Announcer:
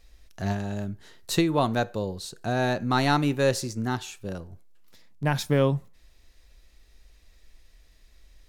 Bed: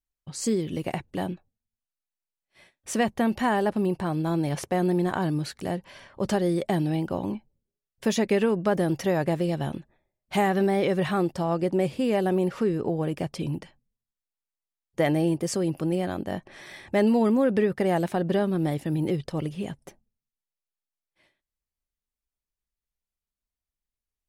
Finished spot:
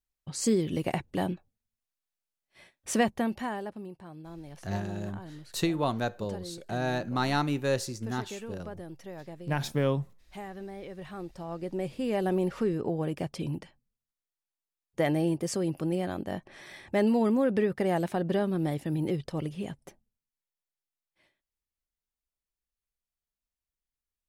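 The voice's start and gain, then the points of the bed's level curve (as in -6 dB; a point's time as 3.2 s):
4.25 s, -5.0 dB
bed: 2.97 s 0 dB
3.93 s -18.5 dB
10.91 s -18.5 dB
12.28 s -3.5 dB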